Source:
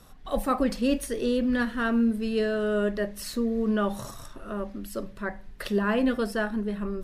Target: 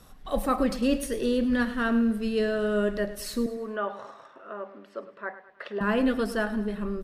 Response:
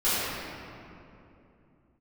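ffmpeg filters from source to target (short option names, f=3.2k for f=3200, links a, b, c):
-filter_complex "[0:a]asettb=1/sr,asplit=3[a][b][c];[a]atrim=end=3.464[d];[b]atrim=start=3.46:end=5.81,asetpts=PTS-STARTPTS,afade=t=in:d=0.004:c=qsin,afade=t=out:st=2.346:d=0.004:c=qsin,highpass=500,lowpass=2.1k[e];[c]atrim=start=5.806[f];[d][e]acrossfade=d=0.004:c1=hsin:c2=qsin[g];[g][f]acrossfade=d=0.004:c1=qsin:c2=hsin,aecho=1:1:105|210|315|420:0.2|0.0898|0.0404|0.0182"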